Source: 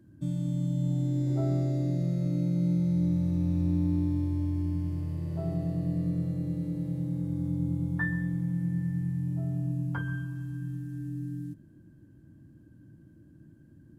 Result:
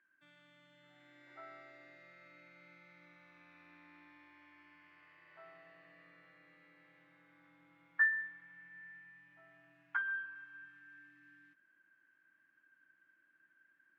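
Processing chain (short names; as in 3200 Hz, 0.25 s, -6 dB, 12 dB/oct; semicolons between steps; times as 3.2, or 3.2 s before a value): Butterworth band-pass 1800 Hz, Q 1.6; in parallel at +2.5 dB: vocal rider 2 s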